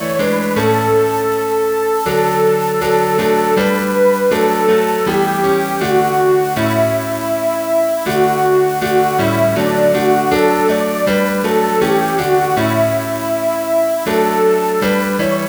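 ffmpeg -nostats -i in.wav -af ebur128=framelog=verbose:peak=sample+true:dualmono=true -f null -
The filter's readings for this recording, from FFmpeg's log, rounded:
Integrated loudness:
  I:         -11.5 LUFS
  Threshold: -21.5 LUFS
Loudness range:
  LRA:         1.3 LU
  Threshold: -31.4 LUFS
  LRA low:   -12.1 LUFS
  LRA high:  -10.8 LUFS
Sample peak:
  Peak:       -2.0 dBFS
True peak:
  Peak:       -2.0 dBFS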